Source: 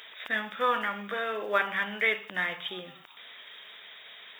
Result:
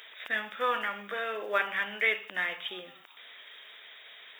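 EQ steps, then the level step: graphic EQ 125/1000/4000 Hz -9/-3/-3 dB; dynamic bell 2.7 kHz, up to +4 dB, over -48 dBFS, Q 4.4; bass shelf 180 Hz -10.5 dB; 0.0 dB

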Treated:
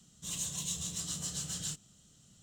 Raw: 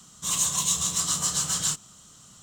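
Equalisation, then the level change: tone controls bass +3 dB, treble -5 dB; peaking EQ 1.1 kHz -14.5 dB 0.88 oct; band-stop 2.2 kHz, Q 21; -8.0 dB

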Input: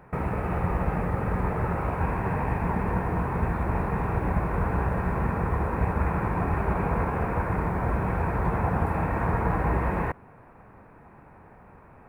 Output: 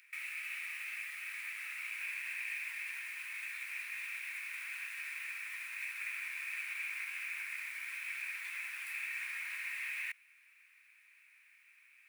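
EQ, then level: elliptic high-pass 2.3 kHz, stop band 80 dB; +8.5 dB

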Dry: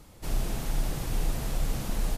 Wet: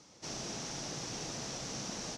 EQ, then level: high-pass 180 Hz 12 dB/octave; four-pole ladder low-pass 6.3 kHz, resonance 70%; +7.0 dB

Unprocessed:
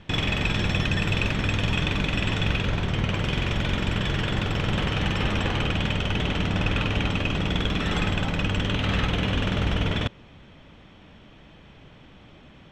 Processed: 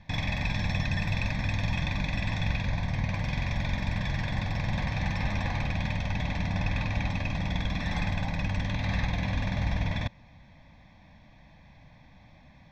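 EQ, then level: static phaser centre 2 kHz, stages 8; -2.5 dB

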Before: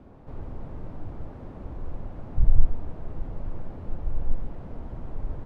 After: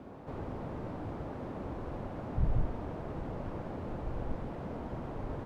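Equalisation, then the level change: high-pass 210 Hz 6 dB/octave; +5.0 dB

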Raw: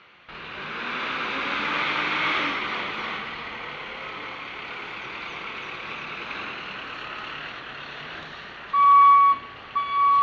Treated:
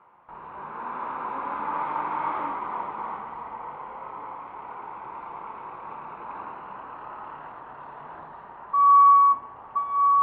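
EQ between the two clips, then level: resonant low-pass 940 Hz, resonance Q 6.1; -7.0 dB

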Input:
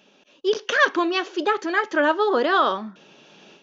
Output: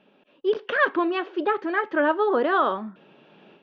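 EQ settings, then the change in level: distance through air 450 m; 0.0 dB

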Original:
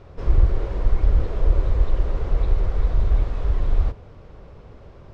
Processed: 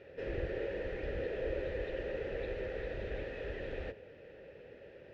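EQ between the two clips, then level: vowel filter e; peaking EQ 550 Hz -10.5 dB 0.54 oct; band-stop 710 Hz, Q 12; +11.5 dB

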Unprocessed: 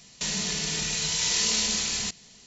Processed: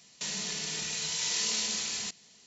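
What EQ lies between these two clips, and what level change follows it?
high-pass 230 Hz 6 dB/octave; -5.5 dB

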